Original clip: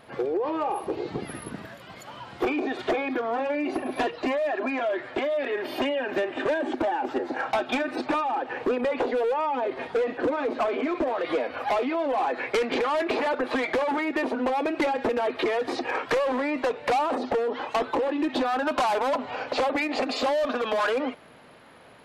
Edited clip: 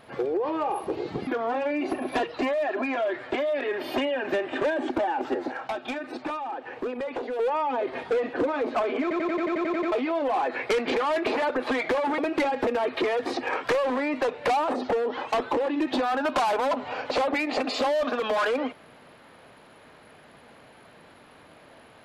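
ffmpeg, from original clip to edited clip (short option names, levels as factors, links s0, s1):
-filter_complex "[0:a]asplit=15[s0][s1][s2][s3][s4][s5][s6][s7][s8][s9][s10][s11][s12][s13][s14];[s0]atrim=end=1.272[s15];[s1]atrim=start=3.108:end=7.362[s16];[s2]atrim=start=7.358:end=9.232,asetpts=PTS-STARTPTS,volume=0.501[s17];[s3]atrim=start=9.228:end=10.952[s18];[s4]atrim=start=10.858:end=10.952[s19];[s5]atrim=start=10.858:end=10.952[s20];[s6]atrim=start=10.858:end=10.952[s21];[s7]atrim=start=10.858:end=10.952[s22];[s8]atrim=start=10.858:end=10.952[s23];[s9]atrim=start=10.858:end=10.952[s24];[s10]atrim=start=10.858:end=10.952[s25];[s11]atrim=start=10.858:end=10.952[s26];[s12]atrim=start=10.858:end=10.952[s27];[s13]atrim=start=11.758:end=14.022[s28];[s14]atrim=start=14.598[s29];[s15][s16]acrossfade=d=0.004:c1=hsin:c2=hsin[s30];[s30][s17]acrossfade=d=0.004:c1=hsin:c2=hsin[s31];[s31][s18]acrossfade=d=0.004:c1=hsin:c2=hsin[s32];[s32][s19]acrossfade=d=0.004:c1=hsin:c2=hsin[s33];[s33][s20]acrossfade=d=0.004:c1=hsin:c2=hsin[s34];[s34][s21]acrossfade=d=0.004:c1=hsin:c2=hsin[s35];[s35][s22]acrossfade=d=0.004:c1=hsin:c2=hsin[s36];[s36][s23]acrossfade=d=0.004:c1=hsin:c2=hsin[s37];[s37][s24]acrossfade=d=0.004:c1=hsin:c2=hsin[s38];[s38][s25]acrossfade=d=0.004:c1=hsin:c2=hsin[s39];[s39][s26]acrossfade=d=0.004:c1=hsin:c2=hsin[s40];[s40][s27]acrossfade=d=0.004:c1=hsin:c2=hsin[s41];[s41][s28]acrossfade=d=0.004:c1=hsin:c2=hsin[s42];[s42][s29]acrossfade=d=0.004:c1=hsin:c2=hsin"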